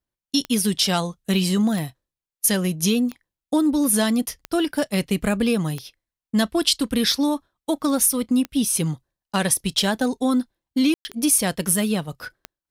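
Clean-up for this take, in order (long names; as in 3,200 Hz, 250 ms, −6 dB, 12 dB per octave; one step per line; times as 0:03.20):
click removal
ambience match 0:10.94–0:11.05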